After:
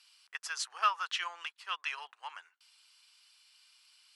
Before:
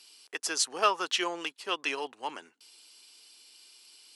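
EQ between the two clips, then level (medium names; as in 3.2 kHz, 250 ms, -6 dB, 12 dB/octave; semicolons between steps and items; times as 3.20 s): ladder high-pass 950 Hz, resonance 30%; treble shelf 4.6 kHz -9.5 dB; +3.0 dB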